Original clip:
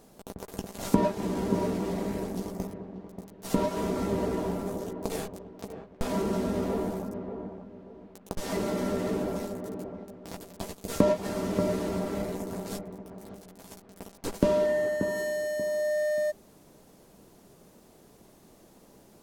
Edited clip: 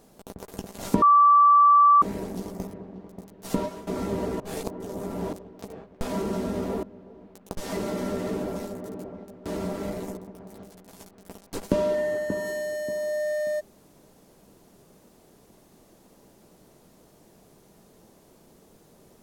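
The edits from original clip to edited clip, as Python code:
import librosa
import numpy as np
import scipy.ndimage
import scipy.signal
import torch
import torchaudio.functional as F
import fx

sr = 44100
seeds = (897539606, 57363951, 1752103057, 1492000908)

y = fx.edit(x, sr, fx.bleep(start_s=1.02, length_s=1.0, hz=1160.0, db=-12.5),
    fx.fade_out_to(start_s=3.55, length_s=0.32, floor_db=-18.5),
    fx.reverse_span(start_s=4.4, length_s=0.93),
    fx.cut(start_s=6.83, length_s=0.8),
    fx.cut(start_s=10.26, length_s=1.52),
    fx.cut(start_s=12.49, length_s=0.39), tone=tone)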